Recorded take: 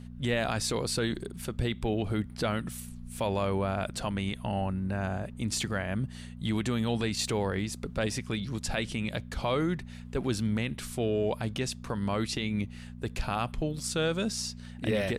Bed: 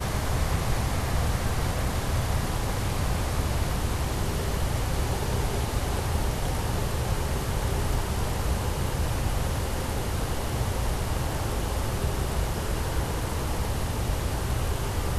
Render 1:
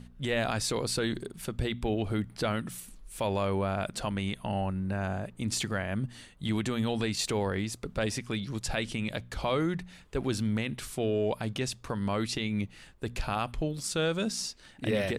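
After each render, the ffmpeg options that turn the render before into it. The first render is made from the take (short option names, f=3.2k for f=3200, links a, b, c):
-af "bandreject=f=60:t=h:w=4,bandreject=f=120:t=h:w=4,bandreject=f=180:t=h:w=4,bandreject=f=240:t=h:w=4"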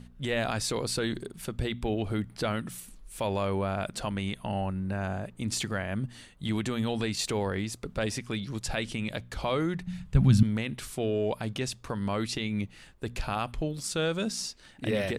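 -filter_complex "[0:a]asettb=1/sr,asplit=3[a][b][c];[a]atrim=end=9.874[d];[b]atrim=start=9.87:end=10.43,asetpts=PTS-STARTPTS,afade=t=in:d=0.004:c=qsin,afade=t=out:st=0.556:d=0.004:c=qsin,lowshelf=f=250:t=q:w=3:g=12[e];[c]atrim=start=10.426[f];[d][e]acrossfade=d=0.004:c1=hsin:c2=qsin[g];[g][f]acrossfade=d=0.004:c1=qsin:c2=hsin"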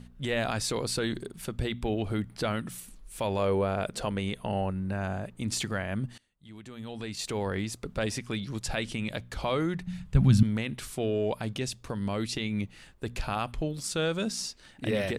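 -filter_complex "[0:a]asettb=1/sr,asplit=3[a][b][c];[a]atrim=end=3.394[d];[b]atrim=start=3.39:end=4.71,asetpts=PTS-STARTPTS,afade=t=in:d=0.004:c=qsin,afade=t=out:st=1.316:d=0.004:c=qsin,equalizer=f=460:w=2.8:g=8[e];[c]atrim=start=4.706[f];[d][e]acrossfade=d=0.004:c1=hsin:c2=qsin[g];[g][f]acrossfade=d=0.004:c1=qsin:c2=hsin,asettb=1/sr,asplit=3[h][i][j];[h]atrim=end=11.564[k];[i]atrim=start=11.56:end=12.36,asetpts=PTS-STARTPTS,afade=t=in:d=0.004:c=qsin,afade=t=out:st=0.796:d=0.004:c=qsin,equalizer=f=1.2k:w=0.95:g=-4.5[l];[j]atrim=start=12.356[m];[k][l]acrossfade=d=0.004:c1=hsin:c2=qsin[n];[n][m]acrossfade=d=0.004:c1=qsin:c2=hsin,asplit=2[o][p];[o]atrim=end=6.18,asetpts=PTS-STARTPTS,afade=t=out:st=6.176:d=0.004:c=hsin:silence=0.0668344[q];[p]atrim=start=6.18,asetpts=PTS-STARTPTS,afade=t=in:d=1.36:c=qua:silence=0.0668344[r];[q][r]concat=n=2:v=0:a=1"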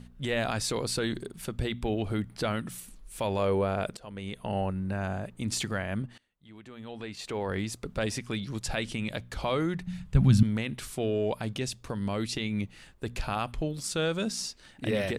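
-filter_complex "[0:a]asettb=1/sr,asplit=3[a][b][c];[a]atrim=end=6.024[d];[b]atrim=start=6.02:end=7.49,asetpts=PTS-STARTPTS,afade=t=in:d=0.004:c=qsin,afade=t=out:st=1.466:d=0.004:c=qsin,bass=f=250:g=-5,treble=f=4k:g=-9[e];[c]atrim=start=7.486[f];[d][e]acrossfade=d=0.004:c1=hsin:c2=qsin[g];[g][f]acrossfade=d=0.004:c1=qsin:c2=hsin,asplit=2[h][i];[h]atrim=end=3.97,asetpts=PTS-STARTPTS,afade=t=out:st=3.966:d=0.004:c=hsin:silence=0.0707946[j];[i]atrim=start=3.97,asetpts=PTS-STARTPTS,afade=t=in:d=0.61:silence=0.0707946[k];[j][k]concat=n=2:v=0:a=1"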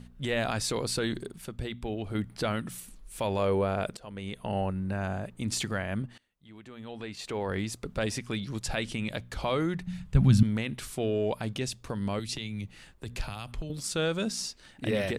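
-filter_complex "[0:a]asettb=1/sr,asplit=3[a][b][c];[a]atrim=end=12.194[d];[b]atrim=start=12.19:end=13.7,asetpts=PTS-STARTPTS,afade=t=in:d=0.004:c=qsin,afade=t=out:st=1.506:d=0.004:c=qsin,acrossover=split=130|3000[e][f][g];[f]acompressor=threshold=-38dB:ratio=6:attack=3.2:release=140:knee=2.83:detection=peak[h];[e][h][g]amix=inputs=3:normalize=0[i];[c]atrim=start=13.696[j];[d][i]acrossfade=d=0.004:c1=hsin:c2=qsin[k];[k][j]acrossfade=d=0.004:c1=qsin:c2=hsin,asplit=3[l][m][n];[l]atrim=end=1.382[o];[m]atrim=start=1.378:end=2.152,asetpts=PTS-STARTPTS,volume=-4.5dB[p];[n]atrim=start=2.148[q];[o][p]acrossfade=d=0.004:c1=hsin:c2=hsin[r];[r][q]acrossfade=d=0.004:c1=hsin:c2=hsin"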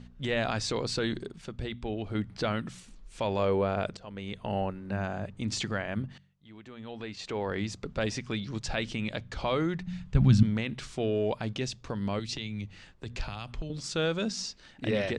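-af "lowpass=f=6.8k:w=0.5412,lowpass=f=6.8k:w=1.3066,bandreject=f=47.04:t=h:w=4,bandreject=f=94.08:t=h:w=4,bandreject=f=141.12:t=h:w=4,bandreject=f=188.16:t=h:w=4"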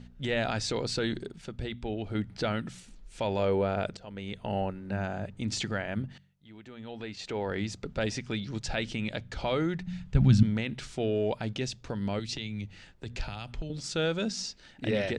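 -af "bandreject=f=1.1k:w=6.6"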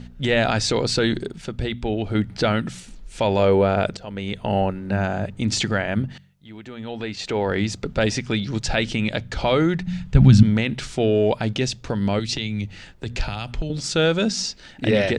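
-af "volume=10dB,alimiter=limit=-2dB:level=0:latency=1"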